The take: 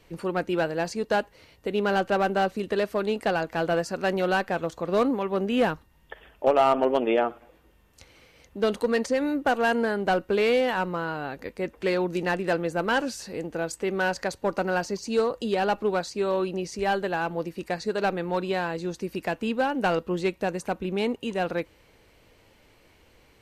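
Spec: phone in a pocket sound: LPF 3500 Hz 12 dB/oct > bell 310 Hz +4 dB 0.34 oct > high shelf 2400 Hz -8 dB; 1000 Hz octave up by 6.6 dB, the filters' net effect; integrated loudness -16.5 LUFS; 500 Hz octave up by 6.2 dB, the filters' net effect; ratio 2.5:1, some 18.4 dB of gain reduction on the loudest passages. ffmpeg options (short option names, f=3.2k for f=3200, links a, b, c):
-af "equalizer=f=500:t=o:g=5.5,equalizer=f=1k:t=o:g=8,acompressor=threshold=-38dB:ratio=2.5,lowpass=3.5k,equalizer=f=310:t=o:w=0.34:g=4,highshelf=f=2.4k:g=-8,volume=19dB"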